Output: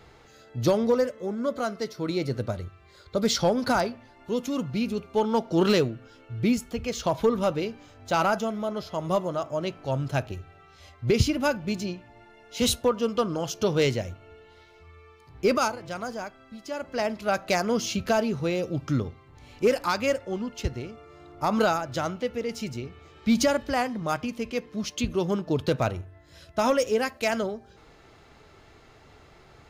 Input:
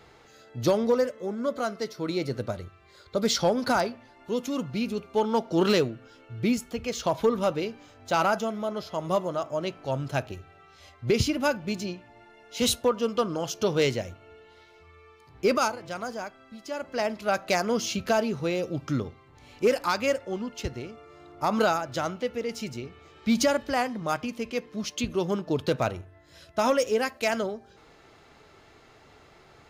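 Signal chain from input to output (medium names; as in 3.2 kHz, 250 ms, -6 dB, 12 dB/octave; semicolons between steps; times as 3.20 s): bass shelf 120 Hz +8 dB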